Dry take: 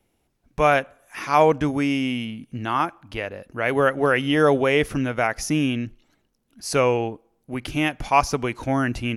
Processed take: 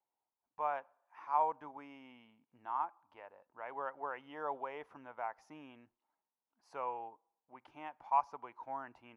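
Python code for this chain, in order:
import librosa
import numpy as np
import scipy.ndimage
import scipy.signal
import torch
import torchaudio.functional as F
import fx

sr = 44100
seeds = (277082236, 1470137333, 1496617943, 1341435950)

y = fx.bandpass_q(x, sr, hz=920.0, q=5.6)
y = y * 10.0 ** (-8.0 / 20.0)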